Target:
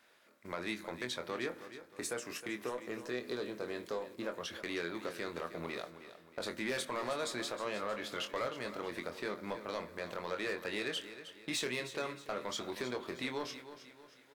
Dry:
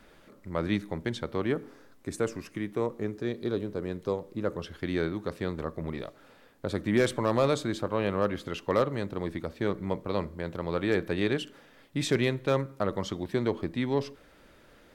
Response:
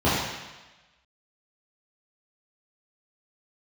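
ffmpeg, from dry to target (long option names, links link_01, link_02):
-filter_complex "[0:a]agate=range=-12dB:threshold=-44dB:ratio=16:detection=peak,highpass=frequency=1100:poles=1,acompressor=threshold=-44dB:ratio=2,asoftclip=type=tanh:threshold=-36dB,asplit=2[link_01][link_02];[link_02]adelay=25,volume=-7dB[link_03];[link_01][link_03]amix=inputs=2:normalize=0,asplit=2[link_04][link_05];[link_05]aecho=0:1:328|656|984|1312:0.237|0.102|0.0438|0.0189[link_06];[link_04][link_06]amix=inputs=2:normalize=0,asetrate=45938,aresample=44100,volume=6.5dB"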